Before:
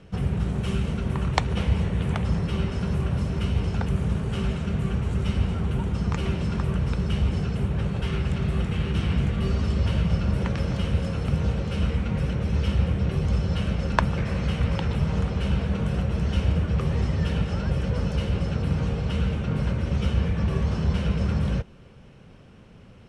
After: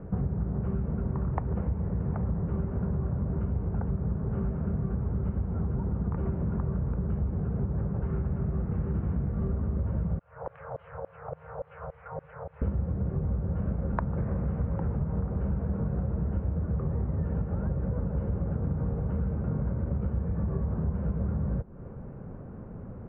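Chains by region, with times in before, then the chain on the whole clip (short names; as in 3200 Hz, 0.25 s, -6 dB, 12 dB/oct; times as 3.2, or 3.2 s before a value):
10.19–12.62 Chebyshev band-stop 160–440 Hz, order 4 + LFO band-pass saw down 3.5 Hz 530–7100 Hz
whole clip: Bessel low-pass 920 Hz, order 6; compressor, threshold -35 dBFS; gain +8 dB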